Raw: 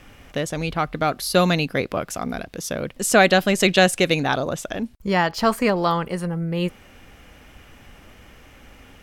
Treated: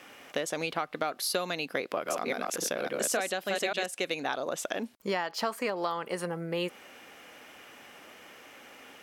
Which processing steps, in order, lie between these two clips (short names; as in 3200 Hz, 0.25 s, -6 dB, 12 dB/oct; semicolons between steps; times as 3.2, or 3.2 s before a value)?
1.77–3.86 reverse delay 0.28 s, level -1.5 dB; HPF 360 Hz 12 dB/oct; compressor 10:1, threshold -27 dBFS, peak gain reduction 18.5 dB